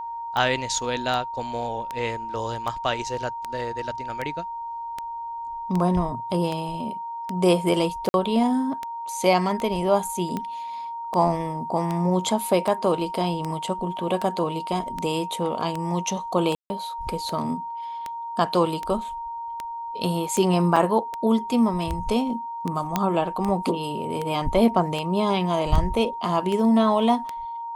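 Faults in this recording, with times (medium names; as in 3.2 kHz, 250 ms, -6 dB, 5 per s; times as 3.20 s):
tick 78 rpm -15 dBFS
whine 930 Hz -30 dBFS
8.09–8.14 s: dropout 51 ms
16.55–16.70 s: dropout 150 ms
20.76–20.77 s: dropout 5.1 ms
22.96 s: pop -7 dBFS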